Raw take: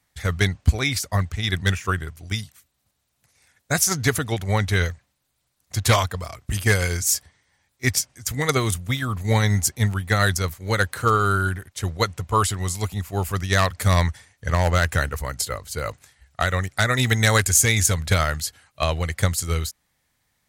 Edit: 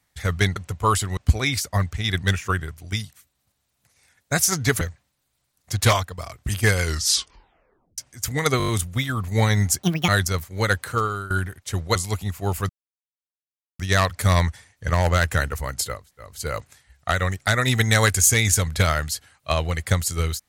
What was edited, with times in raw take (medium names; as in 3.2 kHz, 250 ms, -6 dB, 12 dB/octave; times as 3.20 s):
4.20–4.84 s: delete
5.95–6.21 s: fade out, to -10.5 dB
6.84 s: tape stop 1.17 s
8.61 s: stutter 0.02 s, 6 plays
9.76–10.18 s: speed 166%
10.88–11.40 s: fade out, to -17.5 dB
12.05–12.66 s: move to 0.56 s
13.40 s: insert silence 1.10 s
15.60 s: insert room tone 0.29 s, crossfade 0.24 s